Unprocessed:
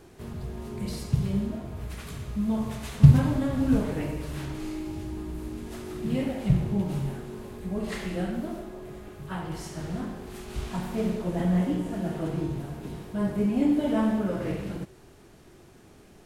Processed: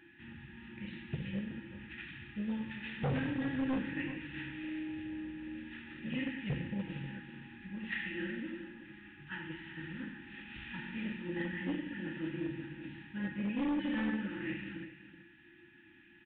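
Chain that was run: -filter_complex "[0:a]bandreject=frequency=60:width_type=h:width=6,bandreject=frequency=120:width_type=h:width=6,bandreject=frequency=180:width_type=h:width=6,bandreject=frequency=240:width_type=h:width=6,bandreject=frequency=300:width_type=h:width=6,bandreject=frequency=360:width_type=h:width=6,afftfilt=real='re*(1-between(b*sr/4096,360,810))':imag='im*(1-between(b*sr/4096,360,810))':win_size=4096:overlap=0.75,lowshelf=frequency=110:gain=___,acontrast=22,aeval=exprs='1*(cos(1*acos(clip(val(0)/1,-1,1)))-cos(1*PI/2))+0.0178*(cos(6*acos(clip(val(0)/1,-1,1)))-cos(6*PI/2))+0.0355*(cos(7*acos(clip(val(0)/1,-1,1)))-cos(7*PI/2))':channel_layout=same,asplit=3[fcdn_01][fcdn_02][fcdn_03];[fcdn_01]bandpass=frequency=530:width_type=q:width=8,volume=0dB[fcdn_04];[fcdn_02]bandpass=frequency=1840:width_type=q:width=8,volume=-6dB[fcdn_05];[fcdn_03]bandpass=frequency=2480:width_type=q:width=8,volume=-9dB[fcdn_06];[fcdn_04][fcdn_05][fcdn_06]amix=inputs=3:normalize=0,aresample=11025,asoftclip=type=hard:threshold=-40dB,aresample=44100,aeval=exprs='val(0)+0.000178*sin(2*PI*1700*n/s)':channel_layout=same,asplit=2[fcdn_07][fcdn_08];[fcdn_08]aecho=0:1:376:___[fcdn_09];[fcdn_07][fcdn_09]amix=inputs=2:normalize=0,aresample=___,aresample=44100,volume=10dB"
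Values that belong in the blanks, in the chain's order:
3.5, 0.224, 8000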